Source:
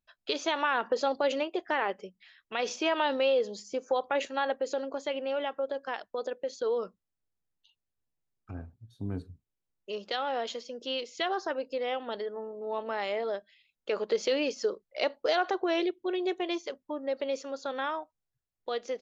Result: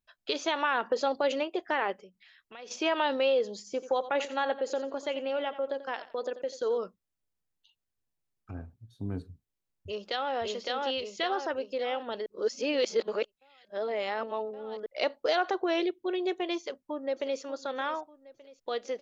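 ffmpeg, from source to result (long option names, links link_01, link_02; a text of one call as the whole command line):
ffmpeg -i in.wav -filter_complex "[0:a]asplit=3[link_01][link_02][link_03];[link_01]afade=type=out:start_time=1.99:duration=0.02[link_04];[link_02]acompressor=threshold=-54dB:ratio=2:attack=3.2:release=140:knee=1:detection=peak,afade=type=in:start_time=1.99:duration=0.02,afade=type=out:start_time=2.7:duration=0.02[link_05];[link_03]afade=type=in:start_time=2.7:duration=0.02[link_06];[link_04][link_05][link_06]amix=inputs=3:normalize=0,asettb=1/sr,asplit=3[link_07][link_08][link_09];[link_07]atrim=end=3.584[link_10];[link_08]atrim=start=3.58:end=6.78,asetpts=PTS-STARTPTS,afade=type=in:duration=0.004:curve=qsin,afade=type=out:start_time=3.196:duration=0.004:curve=qsin,aecho=1:1:88|176|264:0.2|0.0519|0.0135,atrim=end_sample=141120[link_11];[link_09]atrim=start=6.776[link_12];[link_10][link_11]acrossfade=duration=0.004:curve1=hsin:curve2=qsin[link_13];[link_13][link_12]acrossfade=duration=0.004:curve1=qsin:curve2=hsin,asplit=2[link_14][link_15];[link_15]afade=type=in:start_time=9.29:duration=0.01,afade=type=out:start_time=10.34:duration=0.01,aecho=0:1:560|1120|1680|2240|2800|3360|3920:0.891251|0.445625|0.222813|0.111406|0.0557032|0.0278516|0.0139258[link_16];[link_14][link_16]amix=inputs=2:normalize=0,asplit=2[link_17][link_18];[link_18]afade=type=in:start_time=16.57:duration=0.01,afade=type=out:start_time=17.41:duration=0.01,aecho=0:1:590|1180|1770|2360:0.199526|0.0897868|0.0404041|0.0181818[link_19];[link_17][link_19]amix=inputs=2:normalize=0,asplit=3[link_20][link_21][link_22];[link_20]atrim=end=12.262[link_23];[link_21]atrim=start=12.258:end=14.862,asetpts=PTS-STARTPTS,areverse[link_24];[link_22]atrim=start=14.858[link_25];[link_23][link_24]acrossfade=duration=0.004:curve1=hsin:curve2=hsin[link_26];[link_26][link_25]acrossfade=duration=0.004:curve1=hsin:curve2=hsin" out.wav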